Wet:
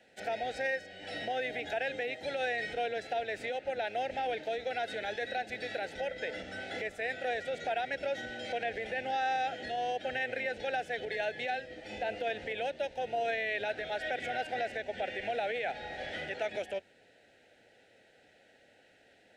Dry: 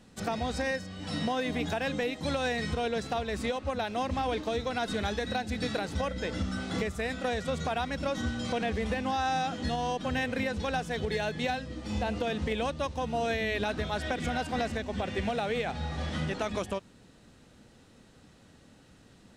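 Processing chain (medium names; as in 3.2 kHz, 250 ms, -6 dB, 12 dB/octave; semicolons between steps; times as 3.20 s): octave divider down 1 oct, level 0 dB; Butterworth band-stop 1.1 kHz, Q 1.2; bass shelf 120 Hz -11.5 dB; peak limiter -25.5 dBFS, peak gain reduction 7 dB; three-band isolator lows -23 dB, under 520 Hz, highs -17 dB, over 2.6 kHz; trim +6 dB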